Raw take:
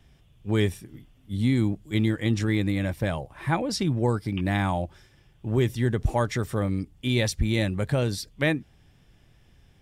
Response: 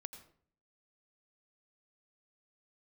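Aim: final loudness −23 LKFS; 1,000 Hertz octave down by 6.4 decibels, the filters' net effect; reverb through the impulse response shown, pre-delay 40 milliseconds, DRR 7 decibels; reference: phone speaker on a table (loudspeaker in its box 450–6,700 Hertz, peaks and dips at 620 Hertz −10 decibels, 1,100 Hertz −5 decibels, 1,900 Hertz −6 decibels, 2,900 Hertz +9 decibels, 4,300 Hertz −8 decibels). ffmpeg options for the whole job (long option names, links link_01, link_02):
-filter_complex "[0:a]equalizer=frequency=1000:width_type=o:gain=-4,asplit=2[link_01][link_02];[1:a]atrim=start_sample=2205,adelay=40[link_03];[link_02][link_03]afir=irnorm=-1:irlink=0,volume=-2.5dB[link_04];[link_01][link_04]amix=inputs=2:normalize=0,highpass=frequency=450:width=0.5412,highpass=frequency=450:width=1.3066,equalizer=frequency=620:width_type=q:width=4:gain=-10,equalizer=frequency=1100:width_type=q:width=4:gain=-5,equalizer=frequency=1900:width_type=q:width=4:gain=-6,equalizer=frequency=2900:width_type=q:width=4:gain=9,equalizer=frequency=4300:width_type=q:width=4:gain=-8,lowpass=frequency=6700:width=0.5412,lowpass=frequency=6700:width=1.3066,volume=11dB"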